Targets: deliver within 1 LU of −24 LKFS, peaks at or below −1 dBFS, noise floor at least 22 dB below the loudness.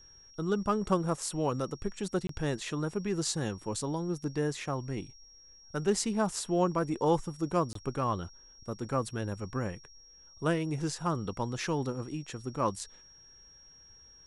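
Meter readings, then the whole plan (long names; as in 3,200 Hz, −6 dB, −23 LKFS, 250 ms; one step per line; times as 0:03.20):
number of dropouts 2; longest dropout 23 ms; interfering tone 5,600 Hz; level of the tone −54 dBFS; integrated loudness −33.0 LKFS; sample peak −13.0 dBFS; target loudness −24.0 LKFS
→ repair the gap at 0:02.27/0:07.73, 23 ms
notch filter 5,600 Hz, Q 30
level +9 dB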